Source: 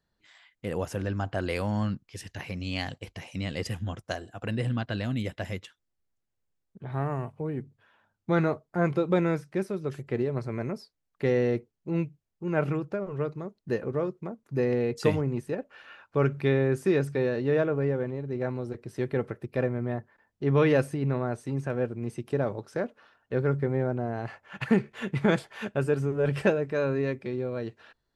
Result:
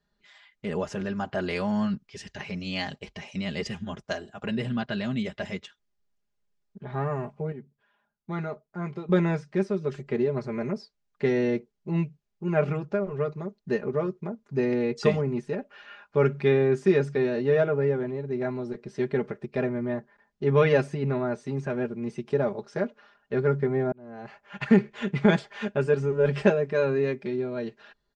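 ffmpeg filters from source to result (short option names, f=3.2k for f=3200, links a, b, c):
-filter_complex "[0:a]asplit=4[a][b][c][d];[a]atrim=end=7.522[e];[b]atrim=start=7.518:end=9.092,asetpts=PTS-STARTPTS,volume=-9dB[f];[c]atrim=start=9.088:end=23.92,asetpts=PTS-STARTPTS,afade=t=out:st=14.828:d=0.004:c=hsin[g];[d]atrim=start=23.92,asetpts=PTS-STARTPTS,afade=t=in:d=0.7[h];[e][f]acrossfade=d=0.004:c1=hsin:c2=hsin[i];[g][h]concat=n=2:v=0:a=1[j];[i][j]acrossfade=d=0.004:c1=hsin:c2=hsin,lowpass=f=7k:w=0.5412,lowpass=f=7k:w=1.3066,aecho=1:1:4.9:0.78"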